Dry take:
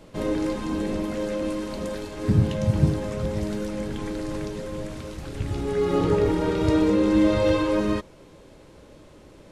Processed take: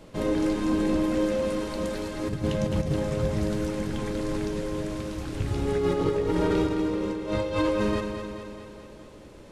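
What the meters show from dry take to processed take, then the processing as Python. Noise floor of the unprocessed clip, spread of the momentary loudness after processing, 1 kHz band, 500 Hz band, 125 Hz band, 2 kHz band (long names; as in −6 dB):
−50 dBFS, 9 LU, −1.5 dB, −2.0 dB, −4.5 dB, −1.0 dB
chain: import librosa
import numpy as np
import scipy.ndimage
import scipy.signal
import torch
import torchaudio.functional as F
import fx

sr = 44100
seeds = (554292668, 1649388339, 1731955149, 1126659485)

p1 = fx.over_compress(x, sr, threshold_db=-23.0, ratio=-0.5)
p2 = p1 + fx.echo_feedback(p1, sr, ms=214, feedback_pct=60, wet_db=-7.5, dry=0)
y = F.gain(torch.from_numpy(p2), -2.0).numpy()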